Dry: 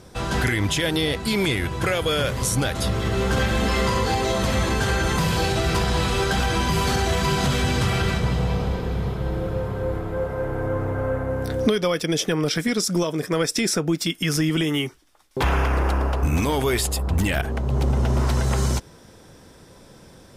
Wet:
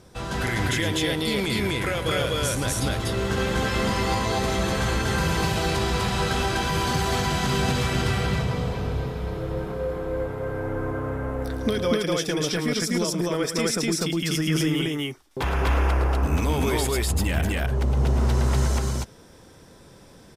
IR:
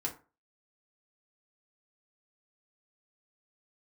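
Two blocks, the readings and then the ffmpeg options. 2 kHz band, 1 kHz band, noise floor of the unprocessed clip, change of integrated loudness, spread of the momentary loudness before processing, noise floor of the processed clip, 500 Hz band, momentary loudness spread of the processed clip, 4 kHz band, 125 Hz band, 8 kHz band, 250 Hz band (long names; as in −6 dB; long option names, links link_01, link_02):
−2.0 dB, −1.5 dB, −48 dBFS, −2.0 dB, 5 LU, −49 dBFS, −2.0 dB, 6 LU, −2.0 dB, −2.0 dB, −2.0 dB, −2.0 dB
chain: -af "aecho=1:1:107.9|247.8:0.316|1,volume=-5dB"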